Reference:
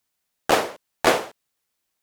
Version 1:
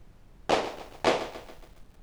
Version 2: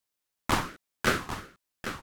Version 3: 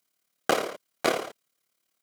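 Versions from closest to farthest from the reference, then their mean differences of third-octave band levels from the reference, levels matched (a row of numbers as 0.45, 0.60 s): 3, 1, 2; 3.0, 4.5, 6.0 dB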